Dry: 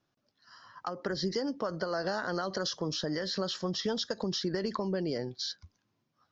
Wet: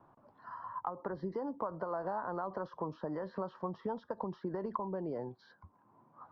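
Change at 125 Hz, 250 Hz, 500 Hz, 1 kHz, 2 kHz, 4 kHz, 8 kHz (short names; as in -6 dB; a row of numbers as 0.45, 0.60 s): -7.0 dB, -6.5 dB, -5.0 dB, +0.5 dB, -12.0 dB, under -30 dB, n/a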